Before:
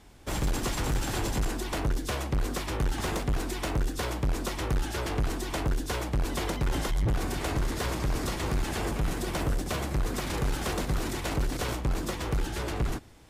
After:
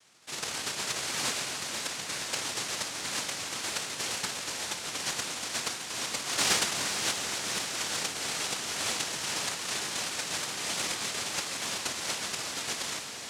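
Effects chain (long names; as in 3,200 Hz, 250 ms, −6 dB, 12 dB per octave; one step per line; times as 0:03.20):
0:06.27–0:06.73: parametric band 230 Hz +10 dB 2.5 octaves
tuned comb filter 170 Hz, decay 0.45 s, harmonics all, mix 90%
rotating-speaker cabinet horn 0.7 Hz, later 6.7 Hz, at 0:04.24
cochlear-implant simulation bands 1
in parallel at −4 dB: soft clipping −35.5 dBFS, distortion −15 dB
on the sum: feedback delay with all-pass diffusion 488 ms, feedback 59%, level −7 dB
level +8 dB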